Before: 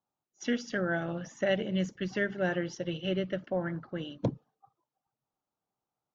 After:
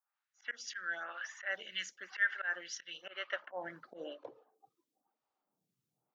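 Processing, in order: auto swell 0.143 s; high-pass sweep 1600 Hz -> 130 Hz, 2.84–5.85; photocell phaser 1 Hz; gain +3.5 dB

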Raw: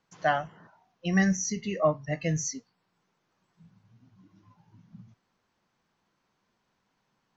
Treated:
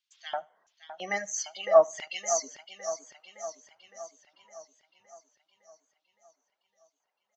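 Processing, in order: Doppler pass-by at 2.74, 18 m/s, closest 15 m; LFO high-pass square 1.5 Hz 620–3300 Hz; feedback echo 75 ms, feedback 24%, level -14 dB; reverb removal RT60 1.2 s; warbling echo 0.562 s, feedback 59%, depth 95 cents, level -11.5 dB; gain +3.5 dB

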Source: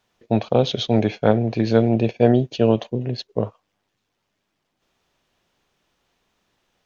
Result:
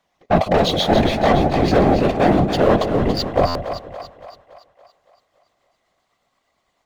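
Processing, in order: gliding pitch shift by +3 st starting unshifted; in parallel at +0.5 dB: vocal rider within 3 dB; on the sum: sample leveller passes 2; small resonant body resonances 700/1100/2000 Hz, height 13 dB; soft clip -3.5 dBFS, distortion -11 dB; whisperiser; on a send: split-band echo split 590 Hz, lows 0.158 s, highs 0.283 s, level -8 dB; on the sum: stuck buffer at 3.47, samples 512, times 6; gain -6 dB

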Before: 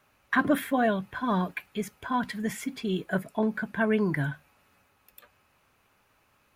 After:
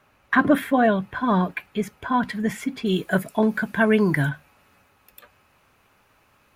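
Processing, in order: high shelf 3800 Hz -7.5 dB, from 2.86 s +6 dB, from 4.29 s -2.5 dB; gain +6.5 dB

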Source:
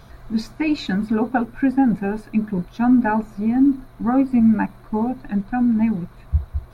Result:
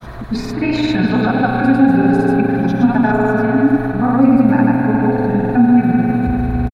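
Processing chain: transient shaper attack +1 dB, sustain +5 dB; on a send: delay with a stepping band-pass 0.107 s, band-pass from 580 Hz, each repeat 1.4 oct, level -2.5 dB; on the sum: spring tank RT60 3.9 s, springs 33 ms, chirp 50 ms, DRR -2 dB; grains 0.1 s, pitch spread up and down by 0 st; three-band squash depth 40%; gain +2.5 dB

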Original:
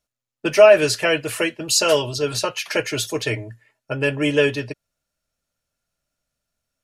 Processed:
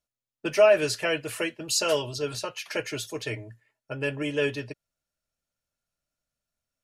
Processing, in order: 2.35–4.42 tremolo saw up 1.6 Hz, depth 30%; gain -7.5 dB

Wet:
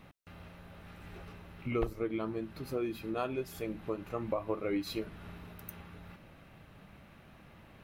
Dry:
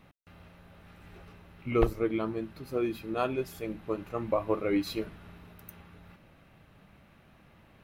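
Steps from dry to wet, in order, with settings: compressor 2:1, threshold -39 dBFS, peak gain reduction 11.5 dB; gain +2.5 dB

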